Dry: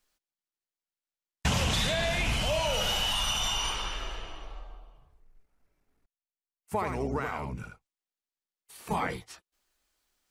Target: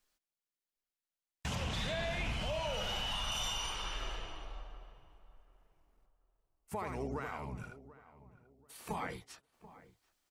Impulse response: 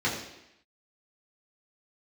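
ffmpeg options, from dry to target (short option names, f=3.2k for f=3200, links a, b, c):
-filter_complex "[0:a]asettb=1/sr,asplit=3[a][b][c];[a]atrim=end=1.554[d];[b]atrim=start=1.55:end=3.32,asetpts=PTS-STARTPTS,afade=t=in:d=0.004:c=qsin,afade=t=out:st=1.766:d=0.004:c=qsin,highshelf=f=5.8k:g=-11.5[e];[c]atrim=start=3.316[f];[d][e]acrossfade=d=0.004:c1=hsin:c2=qsin[g];[g][f]acrossfade=d=0.004:c1=qsin:c2=hsin,alimiter=level_in=1dB:limit=-24dB:level=0:latency=1:release=425,volume=-1dB,asplit=2[h][i];[i]adelay=736,lowpass=f=1.4k:p=1,volume=-16.5dB,asplit=2[j][k];[k]adelay=736,lowpass=f=1.4k:p=1,volume=0.32,asplit=2[l][m];[m]adelay=736,lowpass=f=1.4k:p=1,volume=0.32[n];[j][l][n]amix=inputs=3:normalize=0[o];[h][o]amix=inputs=2:normalize=0,volume=-3.5dB"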